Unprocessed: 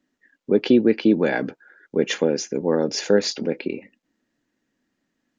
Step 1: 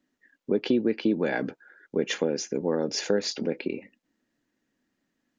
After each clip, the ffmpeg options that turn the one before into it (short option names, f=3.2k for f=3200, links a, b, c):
-af "acompressor=threshold=-21dB:ratio=2,volume=-2.5dB"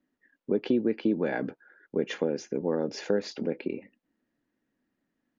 -af "lowpass=f=1.9k:p=1,volume=-1.5dB"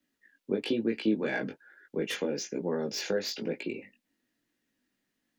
-filter_complex "[0:a]acrossover=split=130|700|2200[a][b][c][d];[d]aeval=exprs='0.0447*sin(PI/2*2.51*val(0)/0.0447)':c=same[e];[a][b][c][e]amix=inputs=4:normalize=0,flanger=delay=17:depth=4.3:speed=1.1"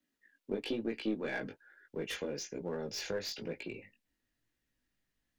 -filter_complex "[0:a]asubboost=boost=11.5:cutoff=75,asplit=2[a][b];[b]aeval=exprs='clip(val(0),-1,0.0178)':c=same,volume=-4.5dB[c];[a][c]amix=inputs=2:normalize=0,volume=-8.5dB"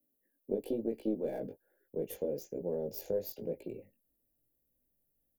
-af "firequalizer=gain_entry='entry(290,0);entry(560,6);entry(1200,-21);entry(5700,-13);entry(12000,13)':delay=0.05:min_phase=1"